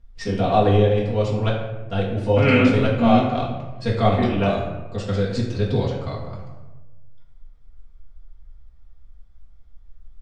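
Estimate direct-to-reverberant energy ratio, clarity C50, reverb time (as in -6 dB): -6.0 dB, 4.0 dB, 1.2 s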